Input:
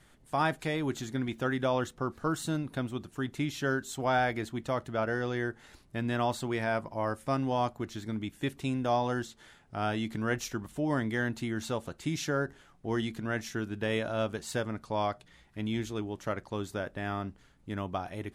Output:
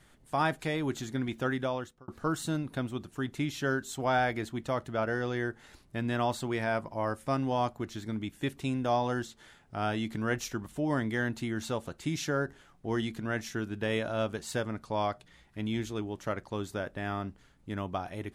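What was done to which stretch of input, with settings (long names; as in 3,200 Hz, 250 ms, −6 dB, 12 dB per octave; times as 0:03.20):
0:01.50–0:02.08: fade out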